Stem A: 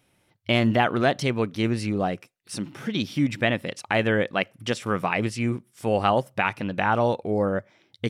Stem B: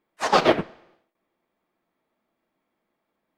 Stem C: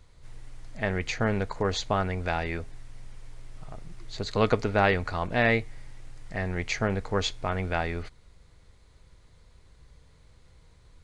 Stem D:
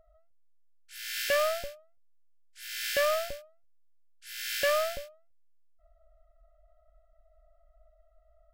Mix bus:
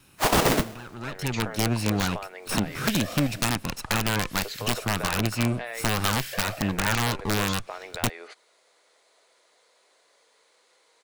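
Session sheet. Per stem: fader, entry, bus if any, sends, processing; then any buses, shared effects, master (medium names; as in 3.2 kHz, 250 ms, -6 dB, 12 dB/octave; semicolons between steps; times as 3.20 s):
0.94 s -20.5 dB -> 1.54 s -14 dB, 0.00 s, no bus, no send, comb filter that takes the minimum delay 0.75 ms; three bands compressed up and down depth 100%
-1.5 dB, 0.00 s, no bus, no send, square wave that keeps the level
-10.0 dB, 0.25 s, bus A, no send, none
-18.0 dB, 1.70 s, bus A, no send, whisper effect
bus A: 0.0 dB, high-pass 420 Hz 24 dB/octave; compression 5:1, threshold -47 dBFS, peak gain reduction 17 dB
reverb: none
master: treble shelf 5.5 kHz +4 dB; level rider gain up to 12.5 dB; integer overflow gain 15 dB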